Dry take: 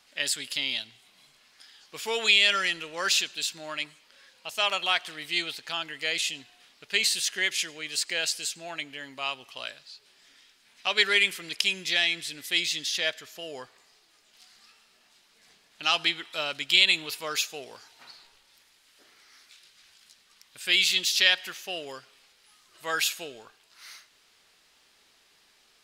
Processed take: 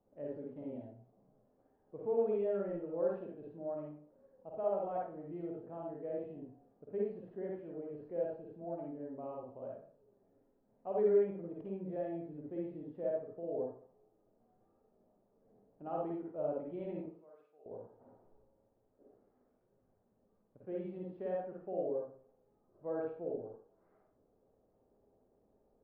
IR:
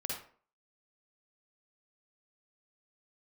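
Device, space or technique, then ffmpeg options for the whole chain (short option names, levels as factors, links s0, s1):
next room: -filter_complex "[0:a]asettb=1/sr,asplit=3[s0][s1][s2];[s0]atrim=end=17.004[s3];[s1]atrim=start=17:end=17.66,asetpts=PTS-STARTPTS,afade=t=in:d=0.004:c=qsin,afade=t=out:st=0.656:d=0.004:c=qsin,aderivative[s4];[s2]atrim=start=17.656[s5];[s3][s4]acrossfade=d=0.004:c1=hsin:c2=qsin[s6];[s6][s5]acrossfade=d=0.004:c1=qsin:c2=hsin,lowpass=f=610:w=0.5412,lowpass=f=610:w=1.3066[s7];[1:a]atrim=start_sample=2205[s8];[s7][s8]afir=irnorm=-1:irlink=0,volume=1.19"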